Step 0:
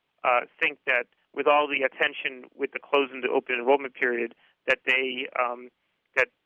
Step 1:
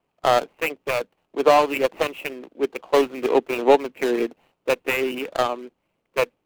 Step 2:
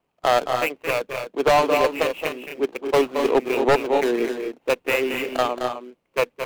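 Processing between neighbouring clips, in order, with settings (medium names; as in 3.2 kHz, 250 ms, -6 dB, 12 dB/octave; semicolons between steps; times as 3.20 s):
median filter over 25 samples; trim +7 dB
loudspeakers at several distances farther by 76 m -8 dB, 87 m -8 dB; wavefolder -10 dBFS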